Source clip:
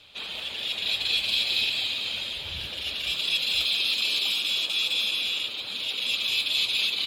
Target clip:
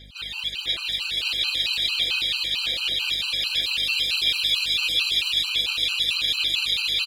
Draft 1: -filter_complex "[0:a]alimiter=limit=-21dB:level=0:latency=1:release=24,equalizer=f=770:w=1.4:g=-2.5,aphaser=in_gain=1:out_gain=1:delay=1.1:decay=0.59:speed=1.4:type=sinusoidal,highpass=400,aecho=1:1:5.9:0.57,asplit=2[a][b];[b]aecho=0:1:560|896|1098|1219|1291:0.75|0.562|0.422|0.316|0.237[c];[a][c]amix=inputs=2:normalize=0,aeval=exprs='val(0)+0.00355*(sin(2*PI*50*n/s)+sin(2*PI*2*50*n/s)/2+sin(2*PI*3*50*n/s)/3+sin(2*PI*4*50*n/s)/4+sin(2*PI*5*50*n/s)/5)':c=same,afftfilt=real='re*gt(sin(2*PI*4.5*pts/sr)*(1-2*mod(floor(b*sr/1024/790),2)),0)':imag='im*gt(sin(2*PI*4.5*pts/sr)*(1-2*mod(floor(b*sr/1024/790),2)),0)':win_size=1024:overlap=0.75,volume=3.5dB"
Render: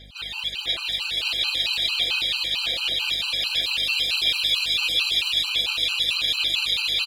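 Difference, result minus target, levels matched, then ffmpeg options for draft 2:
1000 Hz band +3.5 dB
-filter_complex "[0:a]alimiter=limit=-21dB:level=0:latency=1:release=24,equalizer=f=770:w=1.4:g=-10,aphaser=in_gain=1:out_gain=1:delay=1.1:decay=0.59:speed=1.4:type=sinusoidal,highpass=400,aecho=1:1:5.9:0.57,asplit=2[a][b];[b]aecho=0:1:560|896|1098|1219|1291:0.75|0.562|0.422|0.316|0.237[c];[a][c]amix=inputs=2:normalize=0,aeval=exprs='val(0)+0.00355*(sin(2*PI*50*n/s)+sin(2*PI*2*50*n/s)/2+sin(2*PI*3*50*n/s)/3+sin(2*PI*4*50*n/s)/4+sin(2*PI*5*50*n/s)/5)':c=same,afftfilt=real='re*gt(sin(2*PI*4.5*pts/sr)*(1-2*mod(floor(b*sr/1024/790),2)),0)':imag='im*gt(sin(2*PI*4.5*pts/sr)*(1-2*mod(floor(b*sr/1024/790),2)),0)':win_size=1024:overlap=0.75,volume=3.5dB"

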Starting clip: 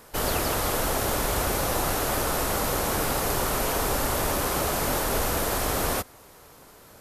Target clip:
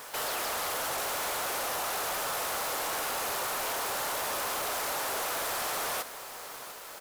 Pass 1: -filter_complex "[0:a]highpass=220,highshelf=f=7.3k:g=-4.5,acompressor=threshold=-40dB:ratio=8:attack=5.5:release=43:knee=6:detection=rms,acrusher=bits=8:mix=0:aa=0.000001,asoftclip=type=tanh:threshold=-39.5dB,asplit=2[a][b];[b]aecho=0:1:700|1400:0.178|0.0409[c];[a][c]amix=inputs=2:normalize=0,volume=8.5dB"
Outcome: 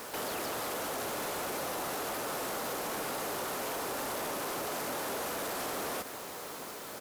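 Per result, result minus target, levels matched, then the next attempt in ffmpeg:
compressor: peak gain reduction +11.5 dB; 250 Hz band +10.5 dB
-filter_complex "[0:a]highpass=220,highshelf=f=7.3k:g=-4.5,acompressor=threshold=-28.5dB:ratio=8:attack=5.5:release=43:knee=6:detection=rms,acrusher=bits=8:mix=0:aa=0.000001,asoftclip=type=tanh:threshold=-39.5dB,asplit=2[a][b];[b]aecho=0:1:700|1400:0.178|0.0409[c];[a][c]amix=inputs=2:normalize=0,volume=8.5dB"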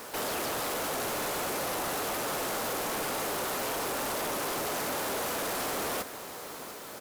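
250 Hz band +10.0 dB
-filter_complex "[0:a]highpass=650,highshelf=f=7.3k:g=-4.5,acompressor=threshold=-28.5dB:ratio=8:attack=5.5:release=43:knee=6:detection=rms,acrusher=bits=8:mix=0:aa=0.000001,asoftclip=type=tanh:threshold=-39.5dB,asplit=2[a][b];[b]aecho=0:1:700|1400:0.178|0.0409[c];[a][c]amix=inputs=2:normalize=0,volume=8.5dB"

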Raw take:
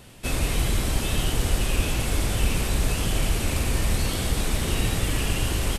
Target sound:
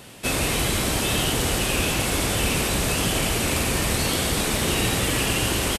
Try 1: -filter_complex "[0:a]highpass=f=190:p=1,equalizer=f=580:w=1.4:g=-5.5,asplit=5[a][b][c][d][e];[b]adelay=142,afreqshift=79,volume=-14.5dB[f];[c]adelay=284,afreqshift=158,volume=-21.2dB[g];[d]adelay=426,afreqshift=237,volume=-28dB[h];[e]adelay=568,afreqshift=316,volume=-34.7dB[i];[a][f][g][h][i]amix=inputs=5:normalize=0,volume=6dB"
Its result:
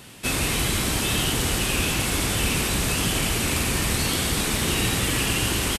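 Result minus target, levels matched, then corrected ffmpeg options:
500 Hz band -3.0 dB
-filter_complex "[0:a]highpass=f=190:p=1,asplit=5[a][b][c][d][e];[b]adelay=142,afreqshift=79,volume=-14.5dB[f];[c]adelay=284,afreqshift=158,volume=-21.2dB[g];[d]adelay=426,afreqshift=237,volume=-28dB[h];[e]adelay=568,afreqshift=316,volume=-34.7dB[i];[a][f][g][h][i]amix=inputs=5:normalize=0,volume=6dB"

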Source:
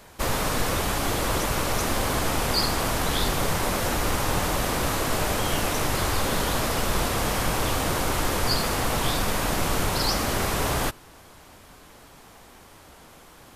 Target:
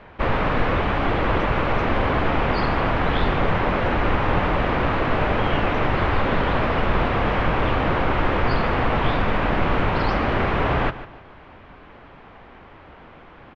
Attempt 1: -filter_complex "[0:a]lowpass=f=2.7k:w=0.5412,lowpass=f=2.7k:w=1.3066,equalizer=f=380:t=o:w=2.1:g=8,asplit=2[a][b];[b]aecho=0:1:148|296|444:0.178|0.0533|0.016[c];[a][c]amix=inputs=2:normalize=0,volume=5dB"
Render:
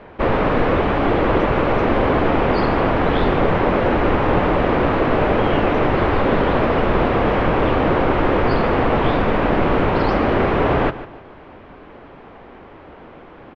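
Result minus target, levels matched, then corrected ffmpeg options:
500 Hz band +2.5 dB
-filter_complex "[0:a]lowpass=f=2.7k:w=0.5412,lowpass=f=2.7k:w=1.3066,asplit=2[a][b];[b]aecho=0:1:148|296|444:0.178|0.0533|0.016[c];[a][c]amix=inputs=2:normalize=0,volume=5dB"

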